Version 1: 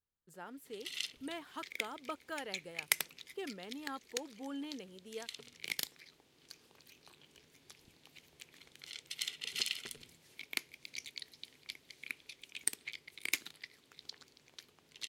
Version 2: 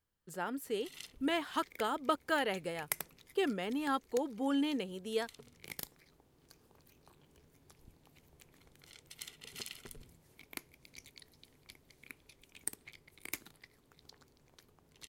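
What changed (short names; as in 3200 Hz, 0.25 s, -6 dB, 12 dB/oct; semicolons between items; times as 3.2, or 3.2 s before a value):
speech +10.5 dB; background: remove weighting filter D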